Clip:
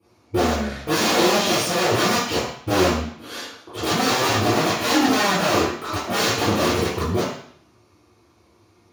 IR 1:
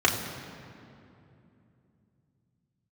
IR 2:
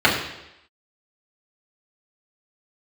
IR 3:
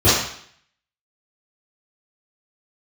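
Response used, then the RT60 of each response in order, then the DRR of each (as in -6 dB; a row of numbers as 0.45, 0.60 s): 3; 2.8, 0.85, 0.60 s; -2.5, -7.0, -13.0 dB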